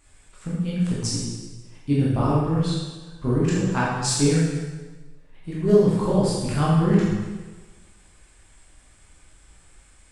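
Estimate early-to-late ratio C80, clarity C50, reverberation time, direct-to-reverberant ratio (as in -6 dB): 1.5 dB, -1.0 dB, 1.3 s, -7.5 dB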